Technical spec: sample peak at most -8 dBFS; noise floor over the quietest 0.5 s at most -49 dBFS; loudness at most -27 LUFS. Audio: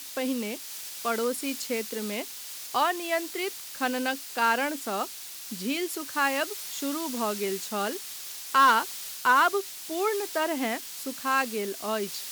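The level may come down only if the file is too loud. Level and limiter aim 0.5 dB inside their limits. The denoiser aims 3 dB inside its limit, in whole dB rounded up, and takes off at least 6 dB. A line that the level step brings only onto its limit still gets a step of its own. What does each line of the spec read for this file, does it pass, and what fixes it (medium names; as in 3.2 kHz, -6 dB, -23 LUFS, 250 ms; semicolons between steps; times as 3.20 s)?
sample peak -12.0 dBFS: pass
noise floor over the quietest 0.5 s -40 dBFS: fail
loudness -28.0 LUFS: pass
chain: noise reduction 12 dB, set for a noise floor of -40 dBFS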